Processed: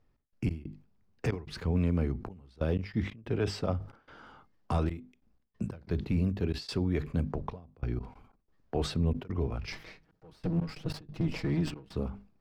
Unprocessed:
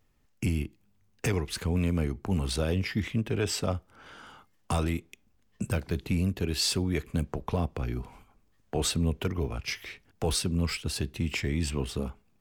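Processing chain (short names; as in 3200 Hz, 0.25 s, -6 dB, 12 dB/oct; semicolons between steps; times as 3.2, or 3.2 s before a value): 9.72–11.94 minimum comb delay 6.3 ms; resonant high shelf 4100 Hz +10 dB, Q 1.5; notches 50/100/150/200/250 Hz; step gate "x.x.xxxx.xxxxx.." 92 bpm -24 dB; air absorption 400 m; sustainer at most 140 dB/s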